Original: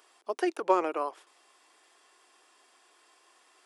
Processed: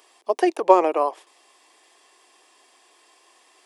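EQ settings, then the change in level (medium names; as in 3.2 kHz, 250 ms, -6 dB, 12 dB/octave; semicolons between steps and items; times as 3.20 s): high-pass 140 Hz; peaking EQ 1.4 kHz -10.5 dB 0.28 oct; dynamic bell 700 Hz, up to +6 dB, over -41 dBFS, Q 0.98; +6.5 dB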